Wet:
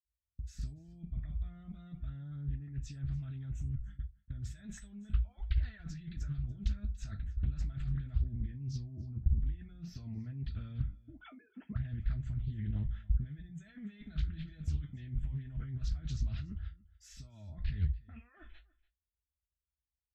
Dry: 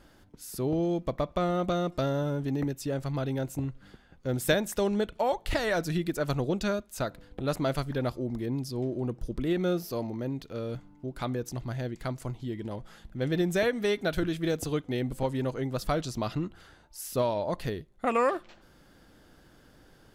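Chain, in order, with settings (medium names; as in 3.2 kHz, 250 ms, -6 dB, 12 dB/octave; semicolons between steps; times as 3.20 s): 10.90–11.71 s: formants replaced by sine waves; gate -49 dBFS, range -31 dB; compressor with a negative ratio -37 dBFS, ratio -1; spectral noise reduction 20 dB; delay 288 ms -22 dB; reverberation, pre-delay 46 ms; loudspeaker Doppler distortion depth 0.79 ms; trim +3.5 dB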